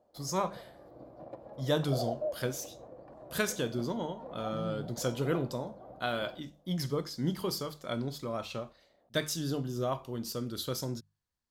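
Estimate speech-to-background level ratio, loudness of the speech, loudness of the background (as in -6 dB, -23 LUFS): 10.0 dB, -35.0 LUFS, -45.0 LUFS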